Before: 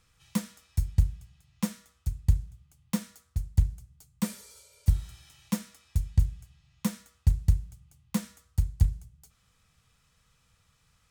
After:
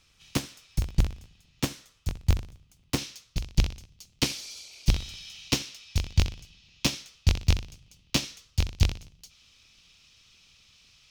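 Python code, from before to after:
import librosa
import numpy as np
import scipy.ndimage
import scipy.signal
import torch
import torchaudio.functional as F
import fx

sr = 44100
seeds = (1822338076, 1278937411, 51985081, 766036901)

y = fx.cycle_switch(x, sr, every=3, mode='inverted')
y = fx.band_shelf(y, sr, hz=3800.0, db=fx.steps((0.0, 8.0), (2.97, 15.5)), octaves=1.7)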